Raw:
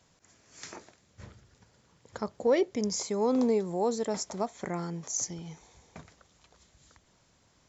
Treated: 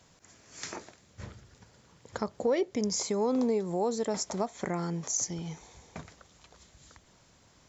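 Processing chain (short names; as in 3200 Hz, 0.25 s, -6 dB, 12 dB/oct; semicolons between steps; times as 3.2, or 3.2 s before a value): compressor 2:1, threshold -34 dBFS, peak gain reduction 8 dB; gain +4.5 dB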